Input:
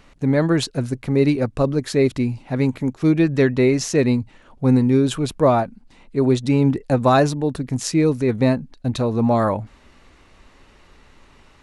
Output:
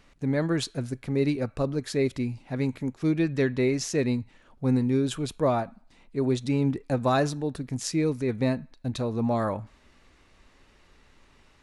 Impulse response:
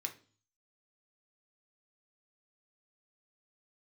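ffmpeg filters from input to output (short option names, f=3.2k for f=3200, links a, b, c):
-filter_complex "[0:a]asplit=2[a][b];[b]highpass=1.1k[c];[1:a]atrim=start_sample=2205,asetrate=27783,aresample=44100[d];[c][d]afir=irnorm=-1:irlink=0,volume=-13dB[e];[a][e]amix=inputs=2:normalize=0,volume=-8dB"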